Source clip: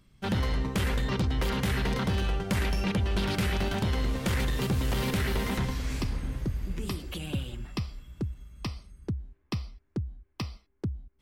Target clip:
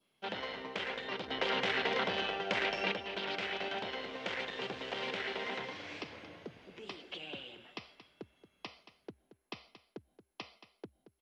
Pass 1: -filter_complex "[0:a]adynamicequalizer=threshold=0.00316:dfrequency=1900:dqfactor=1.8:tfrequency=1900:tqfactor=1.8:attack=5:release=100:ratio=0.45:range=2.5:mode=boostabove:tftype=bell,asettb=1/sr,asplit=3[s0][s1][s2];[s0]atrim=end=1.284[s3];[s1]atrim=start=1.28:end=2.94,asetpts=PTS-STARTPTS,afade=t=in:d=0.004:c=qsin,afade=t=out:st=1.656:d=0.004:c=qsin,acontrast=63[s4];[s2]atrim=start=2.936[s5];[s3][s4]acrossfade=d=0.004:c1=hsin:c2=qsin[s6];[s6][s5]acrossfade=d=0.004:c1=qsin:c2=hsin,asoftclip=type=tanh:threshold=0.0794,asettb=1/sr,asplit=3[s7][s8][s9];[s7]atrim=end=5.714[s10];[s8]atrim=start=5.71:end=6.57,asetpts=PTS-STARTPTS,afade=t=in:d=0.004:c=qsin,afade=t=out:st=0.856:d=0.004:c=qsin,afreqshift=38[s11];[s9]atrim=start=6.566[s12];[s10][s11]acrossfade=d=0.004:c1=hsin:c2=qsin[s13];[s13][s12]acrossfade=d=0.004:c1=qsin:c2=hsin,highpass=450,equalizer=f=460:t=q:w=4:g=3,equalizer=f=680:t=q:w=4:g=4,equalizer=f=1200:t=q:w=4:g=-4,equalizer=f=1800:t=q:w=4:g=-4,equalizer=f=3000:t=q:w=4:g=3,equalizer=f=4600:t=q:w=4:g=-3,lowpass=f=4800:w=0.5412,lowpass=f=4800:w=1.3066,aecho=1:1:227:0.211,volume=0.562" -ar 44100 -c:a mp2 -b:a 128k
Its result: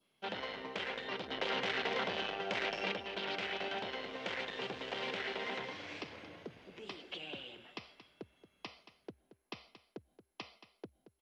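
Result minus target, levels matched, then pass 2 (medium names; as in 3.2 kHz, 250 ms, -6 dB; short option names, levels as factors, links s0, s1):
saturation: distortion +10 dB
-filter_complex "[0:a]adynamicequalizer=threshold=0.00316:dfrequency=1900:dqfactor=1.8:tfrequency=1900:tqfactor=1.8:attack=5:release=100:ratio=0.45:range=2.5:mode=boostabove:tftype=bell,asettb=1/sr,asplit=3[s0][s1][s2];[s0]atrim=end=1.284[s3];[s1]atrim=start=1.28:end=2.94,asetpts=PTS-STARTPTS,afade=t=in:d=0.004:c=qsin,afade=t=out:st=1.656:d=0.004:c=qsin,acontrast=63[s4];[s2]atrim=start=2.936[s5];[s3][s4]acrossfade=d=0.004:c1=hsin:c2=qsin[s6];[s6][s5]acrossfade=d=0.004:c1=qsin:c2=hsin,asoftclip=type=tanh:threshold=0.188,asettb=1/sr,asplit=3[s7][s8][s9];[s7]atrim=end=5.714[s10];[s8]atrim=start=5.71:end=6.57,asetpts=PTS-STARTPTS,afade=t=in:d=0.004:c=qsin,afade=t=out:st=0.856:d=0.004:c=qsin,afreqshift=38[s11];[s9]atrim=start=6.566[s12];[s10][s11]acrossfade=d=0.004:c1=hsin:c2=qsin[s13];[s13][s12]acrossfade=d=0.004:c1=qsin:c2=hsin,highpass=450,equalizer=f=460:t=q:w=4:g=3,equalizer=f=680:t=q:w=4:g=4,equalizer=f=1200:t=q:w=4:g=-4,equalizer=f=1800:t=q:w=4:g=-4,equalizer=f=3000:t=q:w=4:g=3,equalizer=f=4600:t=q:w=4:g=-3,lowpass=f=4800:w=0.5412,lowpass=f=4800:w=1.3066,aecho=1:1:227:0.211,volume=0.562" -ar 44100 -c:a mp2 -b:a 128k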